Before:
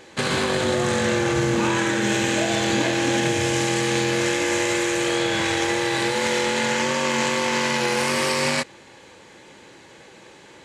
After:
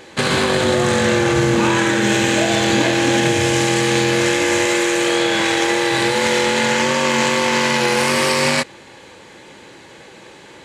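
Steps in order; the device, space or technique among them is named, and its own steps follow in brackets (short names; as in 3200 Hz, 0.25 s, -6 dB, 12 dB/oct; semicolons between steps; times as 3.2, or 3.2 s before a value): exciter from parts (in parallel at -13 dB: HPF 3600 Hz + soft clip -29 dBFS, distortion -12 dB + HPF 4700 Hz 24 dB/oct); 4.65–5.91 on the sum: HPF 170 Hz 12 dB/oct; gain +5.5 dB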